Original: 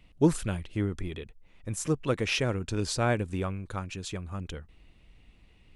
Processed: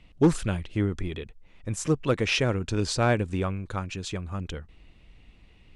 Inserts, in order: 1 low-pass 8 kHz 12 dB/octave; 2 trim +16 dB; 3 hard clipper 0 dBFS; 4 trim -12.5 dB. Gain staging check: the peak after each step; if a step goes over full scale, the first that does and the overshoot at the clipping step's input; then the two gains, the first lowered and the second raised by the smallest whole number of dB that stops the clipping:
-10.5 dBFS, +5.5 dBFS, 0.0 dBFS, -12.5 dBFS; step 2, 5.5 dB; step 2 +10 dB, step 4 -6.5 dB

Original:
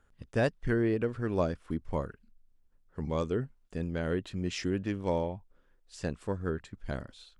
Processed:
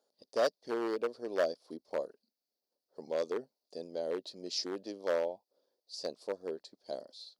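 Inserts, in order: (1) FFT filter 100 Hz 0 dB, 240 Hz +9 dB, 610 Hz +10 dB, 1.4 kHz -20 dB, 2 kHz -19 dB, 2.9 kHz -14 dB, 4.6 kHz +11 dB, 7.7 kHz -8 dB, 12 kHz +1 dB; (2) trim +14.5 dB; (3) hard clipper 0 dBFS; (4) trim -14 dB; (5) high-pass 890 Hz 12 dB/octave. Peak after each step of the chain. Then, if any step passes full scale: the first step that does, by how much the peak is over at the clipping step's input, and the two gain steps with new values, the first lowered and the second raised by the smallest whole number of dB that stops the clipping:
-8.5 dBFS, +6.0 dBFS, 0.0 dBFS, -14.0 dBFS, -19.0 dBFS; step 2, 6.0 dB; step 2 +8.5 dB, step 4 -8 dB

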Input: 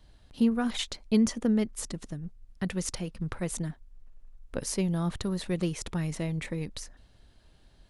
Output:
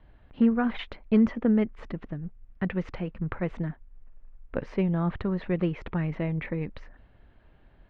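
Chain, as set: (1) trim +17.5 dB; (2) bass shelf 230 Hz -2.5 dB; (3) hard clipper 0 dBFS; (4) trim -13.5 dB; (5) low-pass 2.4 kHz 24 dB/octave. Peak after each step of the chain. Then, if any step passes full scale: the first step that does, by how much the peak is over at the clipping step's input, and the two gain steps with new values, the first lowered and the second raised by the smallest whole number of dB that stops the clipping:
+4.0 dBFS, +3.0 dBFS, 0.0 dBFS, -13.5 dBFS, -13.5 dBFS; step 1, 3.0 dB; step 1 +14.5 dB, step 4 -10.5 dB

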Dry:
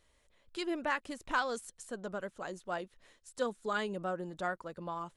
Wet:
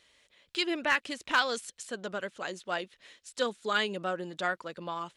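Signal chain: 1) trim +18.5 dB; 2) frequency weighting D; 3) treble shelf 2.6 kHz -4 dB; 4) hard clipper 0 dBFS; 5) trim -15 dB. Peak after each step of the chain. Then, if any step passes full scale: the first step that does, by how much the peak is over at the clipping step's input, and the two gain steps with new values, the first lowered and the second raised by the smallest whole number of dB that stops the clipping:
-0.5 dBFS, +5.5 dBFS, +4.5 dBFS, 0.0 dBFS, -15.0 dBFS; step 2, 4.5 dB; step 1 +13.5 dB, step 5 -10 dB

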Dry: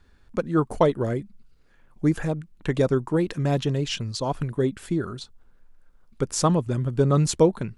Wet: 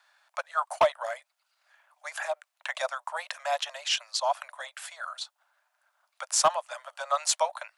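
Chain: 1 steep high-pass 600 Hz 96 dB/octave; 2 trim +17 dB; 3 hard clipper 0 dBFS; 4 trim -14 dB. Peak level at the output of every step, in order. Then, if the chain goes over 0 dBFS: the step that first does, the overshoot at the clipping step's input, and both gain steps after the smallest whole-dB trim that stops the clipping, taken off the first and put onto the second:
-9.0 dBFS, +8.0 dBFS, 0.0 dBFS, -14.0 dBFS; step 2, 8.0 dB; step 2 +9 dB, step 4 -6 dB

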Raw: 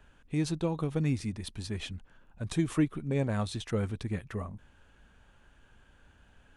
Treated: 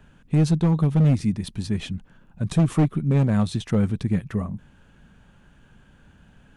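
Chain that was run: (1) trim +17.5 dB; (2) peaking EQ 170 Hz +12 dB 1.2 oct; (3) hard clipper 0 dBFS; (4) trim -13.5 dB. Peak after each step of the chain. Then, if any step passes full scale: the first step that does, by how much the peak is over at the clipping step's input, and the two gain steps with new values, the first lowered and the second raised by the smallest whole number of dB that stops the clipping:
+1.5 dBFS, +9.0 dBFS, 0.0 dBFS, -13.5 dBFS; step 1, 9.0 dB; step 1 +8.5 dB, step 4 -4.5 dB

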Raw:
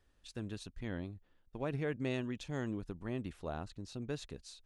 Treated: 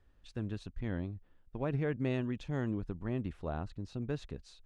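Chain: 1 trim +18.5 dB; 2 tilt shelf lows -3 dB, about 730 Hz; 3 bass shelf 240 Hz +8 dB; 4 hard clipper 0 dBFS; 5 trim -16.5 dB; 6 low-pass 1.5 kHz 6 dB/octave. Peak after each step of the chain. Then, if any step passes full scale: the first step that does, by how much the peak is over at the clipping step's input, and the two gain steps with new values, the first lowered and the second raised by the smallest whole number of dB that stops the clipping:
-4.5 dBFS, -5.0 dBFS, -2.5 dBFS, -2.5 dBFS, -19.0 dBFS, -20.5 dBFS; nothing clips

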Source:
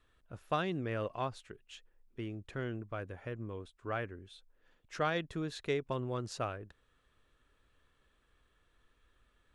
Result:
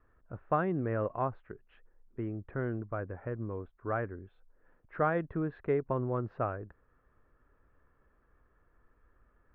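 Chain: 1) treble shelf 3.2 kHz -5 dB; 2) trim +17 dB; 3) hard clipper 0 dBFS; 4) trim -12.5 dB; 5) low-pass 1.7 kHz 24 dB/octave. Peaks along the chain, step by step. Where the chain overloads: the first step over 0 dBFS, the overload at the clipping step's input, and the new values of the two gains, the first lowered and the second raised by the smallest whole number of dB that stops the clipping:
-19.5 dBFS, -2.5 dBFS, -2.5 dBFS, -15.0 dBFS, -16.0 dBFS; nothing clips

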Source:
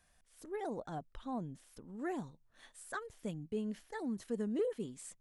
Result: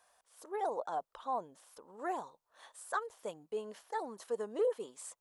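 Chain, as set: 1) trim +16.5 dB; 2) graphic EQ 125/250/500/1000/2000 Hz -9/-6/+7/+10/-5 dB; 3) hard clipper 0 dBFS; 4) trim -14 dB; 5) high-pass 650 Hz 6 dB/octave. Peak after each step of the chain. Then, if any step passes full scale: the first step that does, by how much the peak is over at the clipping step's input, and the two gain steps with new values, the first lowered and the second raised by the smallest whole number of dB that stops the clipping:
-10.0 dBFS, -5.0 dBFS, -5.0 dBFS, -19.0 dBFS, -23.0 dBFS; nothing clips

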